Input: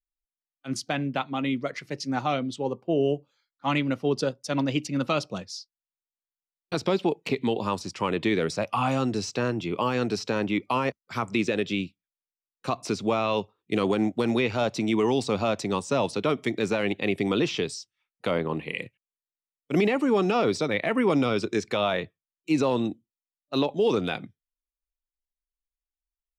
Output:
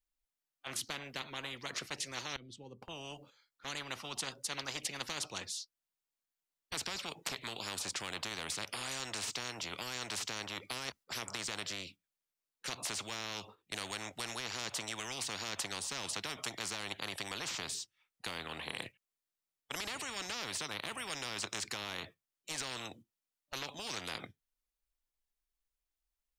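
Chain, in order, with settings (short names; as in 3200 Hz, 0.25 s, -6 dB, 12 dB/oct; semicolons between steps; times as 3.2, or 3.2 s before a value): gate -43 dBFS, range -7 dB; 2.36–2.82 passive tone stack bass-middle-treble 10-0-1; spectral compressor 10:1; gain -1.5 dB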